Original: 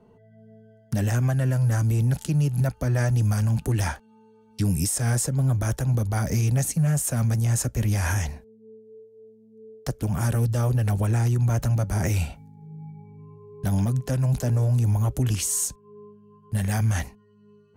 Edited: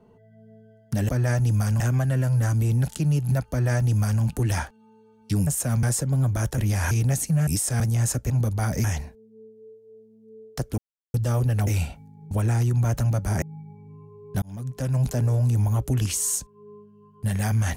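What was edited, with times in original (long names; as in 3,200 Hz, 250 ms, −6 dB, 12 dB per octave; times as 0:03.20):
0:02.80–0:03.51: duplicate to 0:01.09
0:04.76–0:05.09: swap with 0:06.94–0:07.30
0:05.84–0:06.38: swap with 0:07.80–0:08.13
0:10.07–0:10.43: silence
0:12.07–0:12.71: move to 0:10.96
0:13.71–0:14.26: fade in linear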